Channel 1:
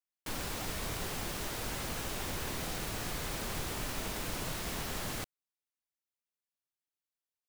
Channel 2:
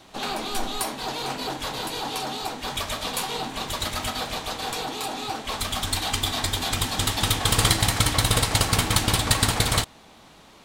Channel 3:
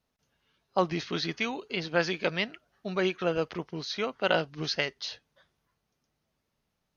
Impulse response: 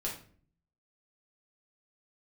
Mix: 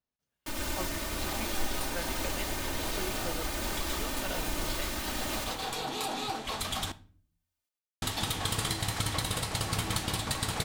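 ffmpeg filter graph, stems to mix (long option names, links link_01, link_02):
-filter_complex "[0:a]aecho=1:1:3.3:0.88,adelay=200,volume=3dB,asplit=2[link_01][link_02];[link_02]volume=-7.5dB[link_03];[1:a]adelay=1000,volume=-1.5dB,asplit=3[link_04][link_05][link_06];[link_04]atrim=end=6.92,asetpts=PTS-STARTPTS,afade=type=out:start_time=6.916:duration=0.004:curve=hsin[link_07];[link_05]atrim=start=6.92:end=8.02,asetpts=PTS-STARTPTS,volume=0[link_08];[link_06]atrim=start=8.02,asetpts=PTS-STARTPTS,afade=type=in:duration=0.004:curve=hsin[link_09];[link_07][link_08][link_09]concat=n=3:v=0:a=1,asplit=2[link_10][link_11];[link_11]volume=-18.5dB[link_12];[2:a]volume=-14dB,asplit=2[link_13][link_14];[link_14]apad=whole_len=513633[link_15];[link_10][link_15]sidechaincompress=threshold=-52dB:ratio=8:attack=16:release=774[link_16];[link_01][link_16]amix=inputs=2:normalize=0,tremolo=f=1.3:d=0.4,acompressor=threshold=-31dB:ratio=6,volume=0dB[link_17];[3:a]atrim=start_sample=2205[link_18];[link_12][link_18]afir=irnorm=-1:irlink=0[link_19];[link_03]aecho=0:1:102|204|306|408|510|612:1|0.45|0.202|0.0911|0.041|0.0185[link_20];[link_13][link_17][link_19][link_20]amix=inputs=4:normalize=0"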